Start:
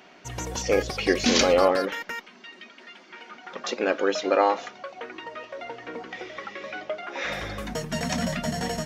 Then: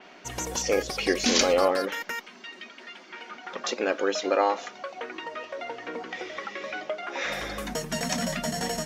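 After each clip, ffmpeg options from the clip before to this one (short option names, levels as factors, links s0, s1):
-filter_complex "[0:a]equalizer=f=92:w=1.7:g=-15,asplit=2[s0][s1];[s1]acompressor=threshold=0.02:ratio=6,volume=0.944[s2];[s0][s2]amix=inputs=2:normalize=0,adynamicequalizer=threshold=0.00794:dfrequency=5700:dqfactor=0.7:tfrequency=5700:tqfactor=0.7:attack=5:release=100:ratio=0.375:range=3:mode=boostabove:tftype=highshelf,volume=0.668"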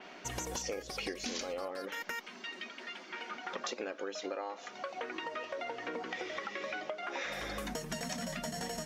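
-af "acompressor=threshold=0.02:ratio=16,volume=0.891"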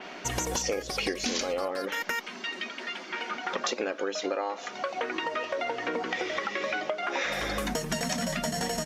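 -af "aresample=32000,aresample=44100,volume=2.66"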